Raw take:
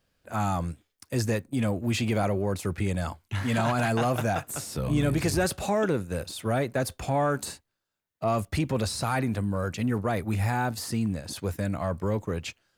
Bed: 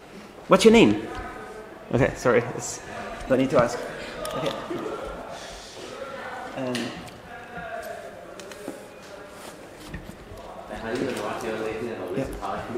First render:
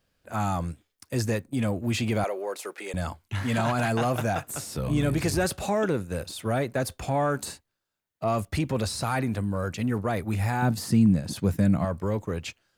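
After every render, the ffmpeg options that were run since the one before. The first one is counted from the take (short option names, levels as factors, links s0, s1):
-filter_complex "[0:a]asettb=1/sr,asplit=3[s0][s1][s2];[s0]atrim=end=2.244[s3];[s1]atrim=start=2.24:end=2.94,asetpts=PTS-STARTPTS,afade=t=in:d=0.004:c=qsin,afade=t=out:st=0.696:d=0.004:c=qsin,highpass=f=400:w=0.5412,highpass=f=400:w=1.3066[s4];[s2]atrim=start=2.936[s5];[s3][s4]acrossfade=d=0.004:c1=hsin:c2=qsin[s6];[s6][s5]acrossfade=d=0.004:c1=qsin:c2=hsin,asettb=1/sr,asplit=3[s7][s8][s9];[s7]atrim=end=10.624[s10];[s8]atrim=start=10.62:end=11.85,asetpts=PTS-STARTPTS,afade=t=in:d=0.004:c=qsin,afade=t=out:st=1.226:d=0.004:c=qsin,equalizer=f=170:w=0.93:g=11.5[s11];[s9]atrim=start=11.846[s12];[s10][s11]acrossfade=d=0.004:c1=hsin:c2=qsin[s13];[s13][s12]acrossfade=d=0.004:c1=qsin:c2=hsin"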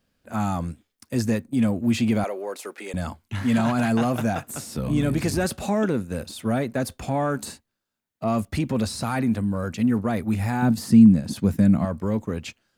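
-af "equalizer=f=230:w=2.7:g=9"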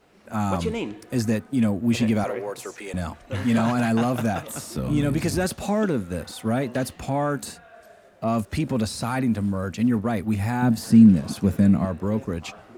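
-filter_complex "[1:a]volume=0.2[s0];[0:a][s0]amix=inputs=2:normalize=0"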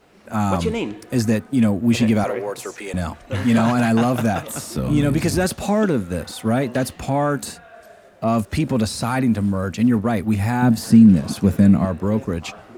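-af "volume=1.68,alimiter=limit=0.708:level=0:latency=1"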